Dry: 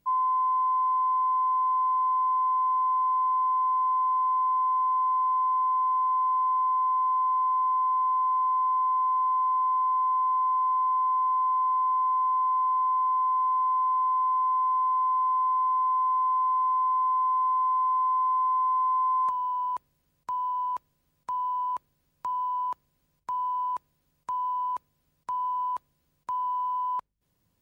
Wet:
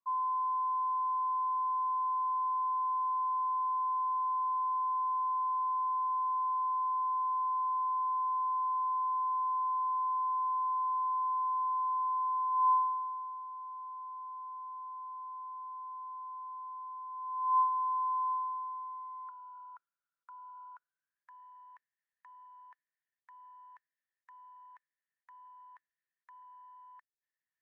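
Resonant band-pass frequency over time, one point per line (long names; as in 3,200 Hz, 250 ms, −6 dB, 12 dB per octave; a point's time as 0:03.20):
resonant band-pass, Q 15
0:12.50 1,100 Hz
0:13.47 770 Hz
0:17.08 770 Hz
0:17.70 1,100 Hz
0:18.32 1,100 Hz
0:19.09 1,400 Hz
0:20.69 1,400 Hz
0:21.43 1,800 Hz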